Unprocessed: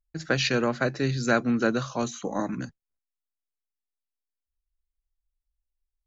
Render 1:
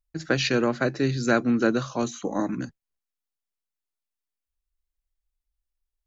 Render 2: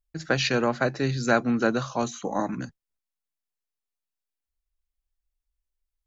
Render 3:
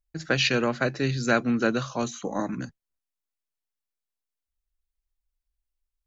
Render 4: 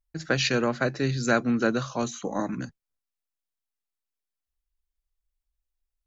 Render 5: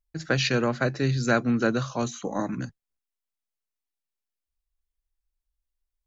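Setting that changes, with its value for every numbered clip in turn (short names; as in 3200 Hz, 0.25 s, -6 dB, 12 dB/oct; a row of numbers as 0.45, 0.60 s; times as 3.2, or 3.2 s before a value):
dynamic EQ, frequency: 320, 820, 2800, 8000, 110 Hz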